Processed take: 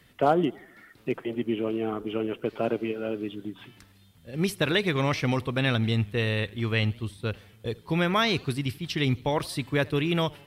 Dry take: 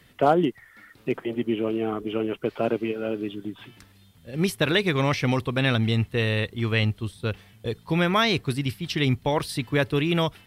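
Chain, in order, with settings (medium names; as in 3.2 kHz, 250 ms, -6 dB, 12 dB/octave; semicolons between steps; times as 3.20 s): modulated delay 84 ms, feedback 54%, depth 163 cents, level -24 dB; trim -2.5 dB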